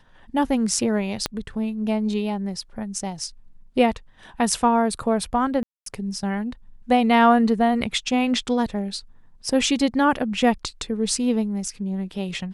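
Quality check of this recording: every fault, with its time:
0:01.26: click −8 dBFS
0:05.63–0:05.86: drop-out 233 ms

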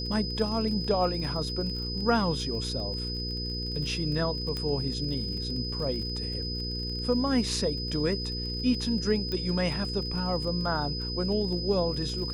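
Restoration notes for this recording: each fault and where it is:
surface crackle 35 per second −36 dBFS
mains hum 60 Hz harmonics 8 −35 dBFS
whistle 5,000 Hz −34 dBFS
0:04.57: click −20 dBFS
0:09.32: click −20 dBFS

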